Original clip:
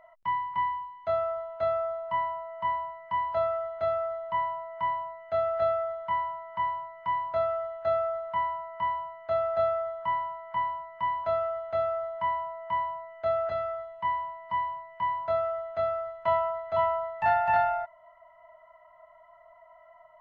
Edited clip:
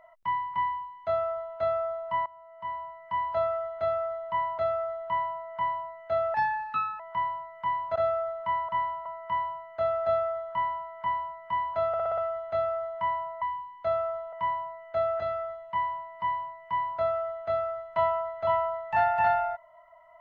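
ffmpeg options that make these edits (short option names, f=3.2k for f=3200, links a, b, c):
-filter_complex "[0:a]asplit=15[a][b][c][d][e][f][g][h][i][j][k][l][m][n][o];[a]atrim=end=2.26,asetpts=PTS-STARTPTS,afade=t=out:st=2.256:d=0.004:c=hsin:silence=0.105925[p];[b]atrim=start=2.26:end=4.582,asetpts=PTS-STARTPTS,afade=t=in:d=0.99:silence=0.105925[q];[c]atrim=start=3.798:end=5.564[r];[d]atrim=start=5.56:end=6.42,asetpts=PTS-STARTPTS,asetrate=57771,aresample=44100,atrim=end_sample=28951,asetpts=PTS-STARTPTS[s];[e]atrim=start=6.416:end=7.382[t];[f]atrim=start=7.828:end=8.562[u];[g]atrim=start=10.018:end=10.392[v];[h]atrim=start=8.558:end=11.442[w];[i]atrim=start=11.378:end=11.442[x];[j]atrim=start=11.378:end=11.442[y];[k]atrim=start=11.378:end=11.442[z];[l]atrim=start=11.378:end=11.442[aa];[m]atrim=start=11.378:end=12.622[ab];[n]atrim=start=0.638:end=1.552[ac];[o]atrim=start=12.618[ad];[p][q]concat=n=2:v=0:a=1[ae];[ae][r]acrossfade=d=0.004:c1=hsin:c2=hsin[af];[af][s]acrossfade=d=0.004:c1=hsin:c2=hsin[ag];[ag][t]acrossfade=d=0.004:c1=hsin:c2=hsin[ah];[ah][u]acrossfade=d=0.004:c1=hsin:c2=hsin[ai];[ai][v]acrossfade=d=0.004:c1=hsin:c2=hsin[aj];[aj][w]acrossfade=d=0.004:c1=hsin:c2=hsin[ak];[ak][x]acrossfade=d=0.004:c1=hsin:c2=hsin[al];[al][y]acrossfade=d=0.004:c1=hsin:c2=hsin[am];[am][z]acrossfade=d=0.004:c1=hsin:c2=hsin[an];[an][aa]acrossfade=d=0.004:c1=hsin:c2=hsin[ao];[ao][ab]acrossfade=d=0.004:c1=hsin:c2=hsin[ap];[ap][ac]acrossfade=d=0.004:c1=hsin:c2=hsin[aq];[aq][ad]acrossfade=d=0.004:c1=hsin:c2=hsin"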